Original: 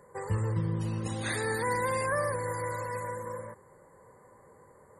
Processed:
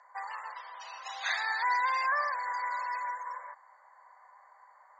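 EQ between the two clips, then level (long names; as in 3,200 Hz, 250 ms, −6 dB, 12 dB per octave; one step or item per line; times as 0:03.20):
Chebyshev band-pass filter 680–6,300 Hz, order 5
+4.0 dB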